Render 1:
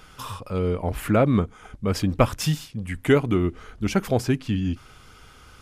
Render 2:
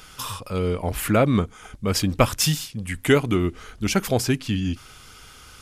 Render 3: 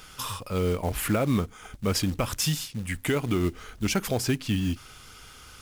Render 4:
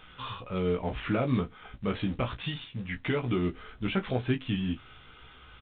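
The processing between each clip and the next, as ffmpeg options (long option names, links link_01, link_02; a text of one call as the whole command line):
ffmpeg -i in.wav -af "highshelf=frequency=2600:gain=10" out.wav
ffmpeg -i in.wav -af "alimiter=limit=-13.5dB:level=0:latency=1:release=109,acrusher=bits=5:mode=log:mix=0:aa=0.000001,volume=-2dB" out.wav
ffmpeg -i in.wav -filter_complex "[0:a]asplit=2[link_01][link_02];[link_02]aecho=0:1:16|34:0.631|0.2[link_03];[link_01][link_03]amix=inputs=2:normalize=0,volume=-4.5dB" -ar 8000 -c:a pcm_alaw out.wav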